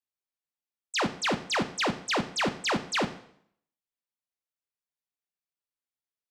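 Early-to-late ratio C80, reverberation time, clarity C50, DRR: 16.5 dB, 0.65 s, 14.0 dB, 9.0 dB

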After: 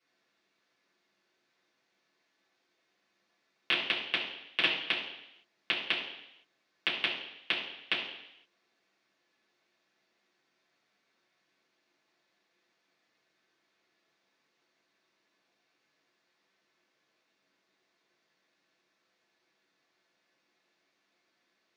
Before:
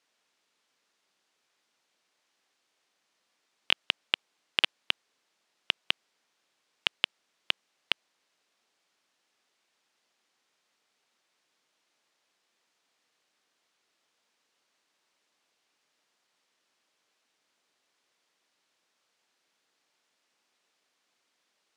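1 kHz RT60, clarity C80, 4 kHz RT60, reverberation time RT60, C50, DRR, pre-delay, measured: 0.80 s, 7.5 dB, 0.85 s, 0.80 s, 5.0 dB, -7.5 dB, 3 ms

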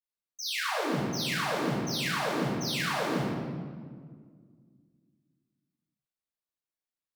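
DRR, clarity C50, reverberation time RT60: -11.0 dB, -1.5 dB, 1.8 s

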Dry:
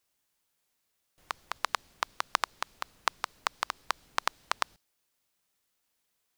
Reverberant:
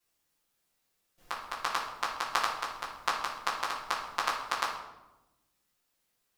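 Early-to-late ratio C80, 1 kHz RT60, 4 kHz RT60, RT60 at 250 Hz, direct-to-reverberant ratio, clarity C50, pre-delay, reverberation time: 7.0 dB, 0.90 s, 0.65 s, 1.5 s, -10.0 dB, 4.0 dB, 6 ms, 1.0 s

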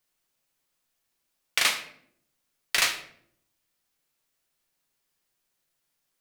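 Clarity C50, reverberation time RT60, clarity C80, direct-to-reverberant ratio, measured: 10.0 dB, 0.65 s, 13.5 dB, 4.0 dB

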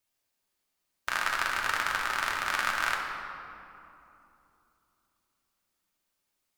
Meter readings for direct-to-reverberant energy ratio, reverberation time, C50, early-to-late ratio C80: -1.0 dB, 2.9 s, 2.5 dB, 3.5 dB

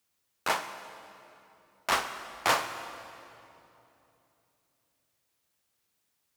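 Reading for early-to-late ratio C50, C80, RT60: 9.5 dB, 10.5 dB, 3.0 s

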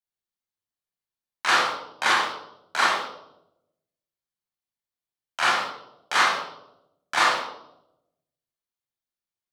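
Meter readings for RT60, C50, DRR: 0.85 s, 1.5 dB, -5.5 dB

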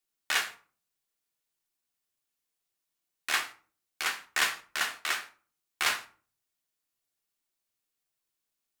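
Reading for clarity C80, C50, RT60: 19.5 dB, 14.0 dB, 0.40 s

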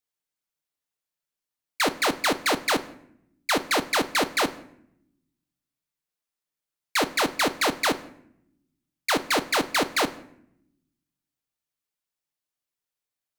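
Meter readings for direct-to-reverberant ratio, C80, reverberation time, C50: 9.5 dB, 19.5 dB, 0.70 s, 16.0 dB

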